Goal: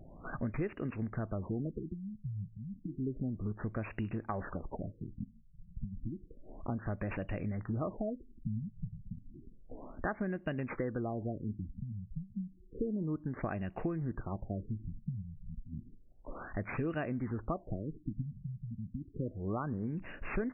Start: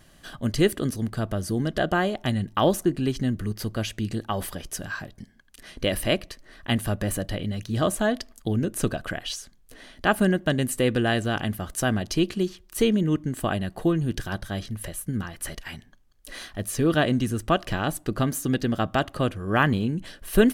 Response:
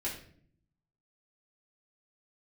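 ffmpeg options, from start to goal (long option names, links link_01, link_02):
-af "acompressor=threshold=-38dB:ratio=5,acrusher=samples=6:mix=1:aa=0.000001,afftfilt=real='re*lt(b*sr/1024,200*pow(2900/200,0.5+0.5*sin(2*PI*0.31*pts/sr)))':imag='im*lt(b*sr/1024,200*pow(2900/200,0.5+0.5*sin(2*PI*0.31*pts/sr)))':win_size=1024:overlap=0.75,volume=3.5dB"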